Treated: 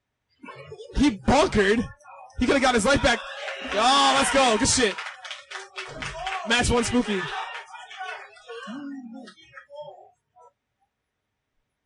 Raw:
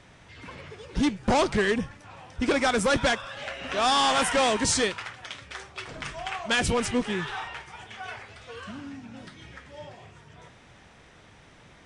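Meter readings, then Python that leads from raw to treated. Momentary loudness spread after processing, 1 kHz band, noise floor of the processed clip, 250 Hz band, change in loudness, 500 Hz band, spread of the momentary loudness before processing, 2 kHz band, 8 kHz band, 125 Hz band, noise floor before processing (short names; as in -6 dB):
19 LU, +3.5 dB, -80 dBFS, +4.0 dB, +3.5 dB, +3.5 dB, 21 LU, +3.0 dB, +3.0 dB, +2.5 dB, -54 dBFS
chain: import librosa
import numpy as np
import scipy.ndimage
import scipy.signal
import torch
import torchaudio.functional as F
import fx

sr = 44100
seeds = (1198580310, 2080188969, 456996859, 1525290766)

y = fx.notch_comb(x, sr, f0_hz=170.0)
y = fx.noise_reduce_blind(y, sr, reduce_db=30)
y = y * 10.0 ** (4.5 / 20.0)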